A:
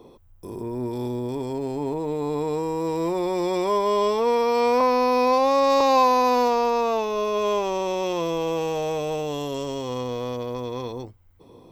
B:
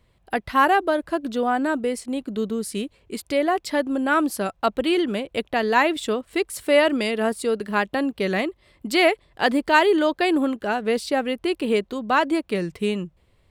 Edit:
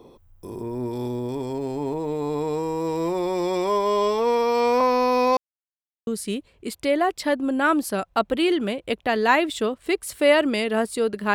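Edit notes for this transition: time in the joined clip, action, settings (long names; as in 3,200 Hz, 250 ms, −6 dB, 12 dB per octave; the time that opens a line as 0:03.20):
A
0:05.37–0:06.07: silence
0:06.07: continue with B from 0:02.54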